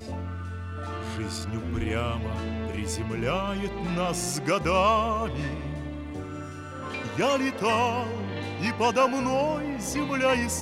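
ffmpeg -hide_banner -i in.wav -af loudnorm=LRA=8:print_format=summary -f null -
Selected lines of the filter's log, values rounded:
Input Integrated:    -27.3 LUFS
Input True Peak:     -11.1 dBTP
Input LRA:             4.5 LU
Input Threshold:     -37.4 LUFS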